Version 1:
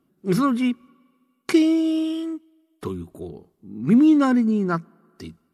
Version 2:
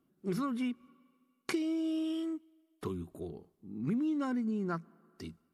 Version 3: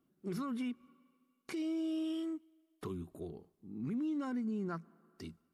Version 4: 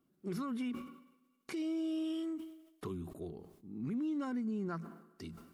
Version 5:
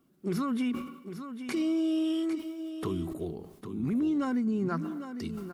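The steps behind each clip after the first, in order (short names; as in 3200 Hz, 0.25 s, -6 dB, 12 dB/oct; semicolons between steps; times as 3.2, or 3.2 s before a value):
compressor 5:1, threshold -24 dBFS, peak gain reduction 11.5 dB; gain -7 dB
limiter -28.5 dBFS, peak gain reduction 10 dB; gain -2.5 dB
sustainer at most 75 dB/s
echo 0.803 s -10 dB; gain +8 dB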